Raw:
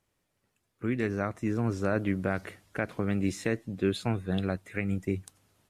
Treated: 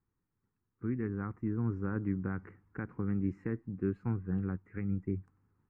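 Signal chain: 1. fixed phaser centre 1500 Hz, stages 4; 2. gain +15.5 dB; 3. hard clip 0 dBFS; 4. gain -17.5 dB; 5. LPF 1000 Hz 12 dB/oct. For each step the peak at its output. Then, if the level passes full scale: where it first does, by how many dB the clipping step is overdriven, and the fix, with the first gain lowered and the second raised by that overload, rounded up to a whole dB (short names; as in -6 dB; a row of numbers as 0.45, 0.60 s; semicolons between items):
-17.5, -2.0, -2.0, -19.5, -21.0 dBFS; no overload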